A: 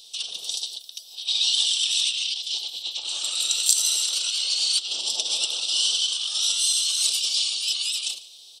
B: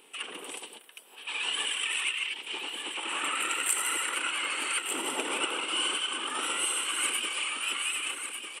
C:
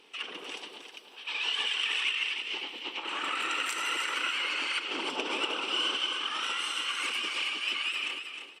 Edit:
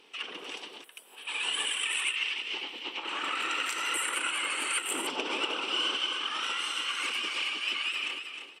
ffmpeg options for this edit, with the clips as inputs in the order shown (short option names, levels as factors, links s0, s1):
-filter_complex "[1:a]asplit=2[s0][s1];[2:a]asplit=3[s2][s3][s4];[s2]atrim=end=0.842[s5];[s0]atrim=start=0.838:end=2.162[s6];[s3]atrim=start=2.158:end=3.942[s7];[s1]atrim=start=3.938:end=5.072[s8];[s4]atrim=start=5.068[s9];[s5][s6]acrossfade=d=0.004:c1=hsin:c2=hsin[s10];[s10][s7]acrossfade=d=0.004:c1=hsin:c2=hsin[s11];[s11][s8]acrossfade=d=0.004:c1=hsin:c2=hsin[s12];[s12][s9]acrossfade=d=0.004:c1=hsin:c2=hsin"